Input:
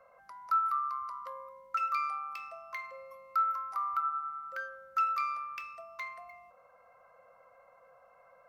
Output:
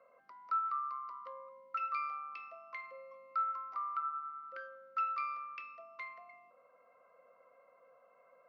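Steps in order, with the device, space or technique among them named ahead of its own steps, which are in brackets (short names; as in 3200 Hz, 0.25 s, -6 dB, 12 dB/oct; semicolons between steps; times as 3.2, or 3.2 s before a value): 3.84–5.33 HPF 120 Hz; kitchen radio (speaker cabinet 210–4100 Hz, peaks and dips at 260 Hz +9 dB, 420 Hz +5 dB, 820 Hz -9 dB, 1600 Hz -6 dB, 3600 Hz -4 dB); gain -3 dB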